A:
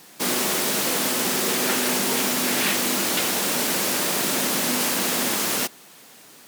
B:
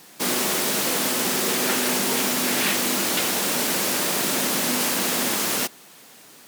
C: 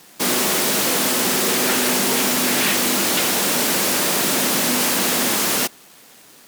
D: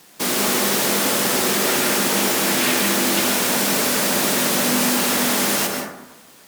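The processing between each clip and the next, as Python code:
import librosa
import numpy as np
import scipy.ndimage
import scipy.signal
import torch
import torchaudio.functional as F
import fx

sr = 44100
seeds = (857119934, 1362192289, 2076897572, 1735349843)

y1 = x
y2 = fx.leveller(y1, sr, passes=2)
y2 = y2 * 10.0 ** (-2.0 / 20.0)
y3 = fx.rev_plate(y2, sr, seeds[0], rt60_s=0.99, hf_ratio=0.35, predelay_ms=120, drr_db=1.5)
y3 = y3 * 10.0 ** (-2.0 / 20.0)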